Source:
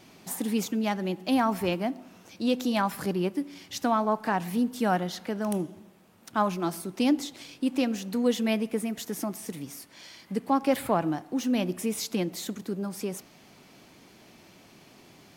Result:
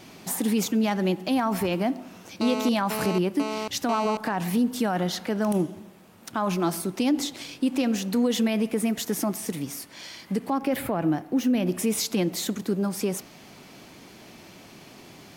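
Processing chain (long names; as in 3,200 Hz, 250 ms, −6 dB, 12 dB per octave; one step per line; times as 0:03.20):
0:10.58–0:11.67: octave-band graphic EQ 1,000/4,000/8,000 Hz −5/−5/−7 dB
brickwall limiter −22.5 dBFS, peak gain reduction 10.5 dB
0:02.41–0:04.17: phone interference −37 dBFS
level +6.5 dB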